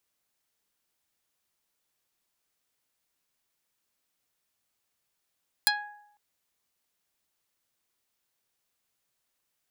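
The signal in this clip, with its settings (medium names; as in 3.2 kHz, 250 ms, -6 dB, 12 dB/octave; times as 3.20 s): plucked string G#5, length 0.50 s, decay 0.80 s, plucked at 0.31, dark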